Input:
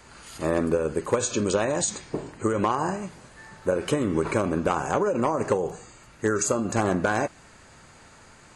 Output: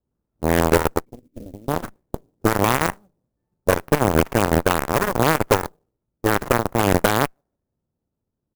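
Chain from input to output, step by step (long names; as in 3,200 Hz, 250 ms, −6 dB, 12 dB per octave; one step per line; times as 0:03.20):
on a send: repeating echo 146 ms, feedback 31%, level −22 dB
on the sum: harmonic generator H 5 −33 dB, 6 −24 dB, 7 −17 dB, 8 −19 dB, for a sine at −11.5 dBFS
0:01.05–0:01.68: formant resonators in series i
harmonic generator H 2 −18 dB, 3 −11 dB, 6 −22 dB, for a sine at −11.5 dBFS
in parallel at −9 dB: hard clipping −20 dBFS, distortion −8 dB
on the sum: low-pass that shuts in the quiet parts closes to 380 Hz, open at −15 dBFS
converter with an unsteady clock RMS 0.044 ms
level +7.5 dB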